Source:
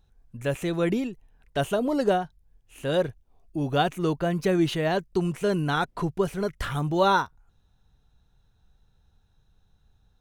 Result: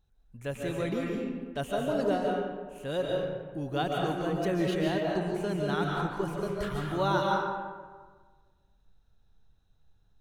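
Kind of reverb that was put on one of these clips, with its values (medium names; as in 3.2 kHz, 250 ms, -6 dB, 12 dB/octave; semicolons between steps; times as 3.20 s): algorithmic reverb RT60 1.5 s, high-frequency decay 0.55×, pre-delay 105 ms, DRR -1.5 dB; trim -8 dB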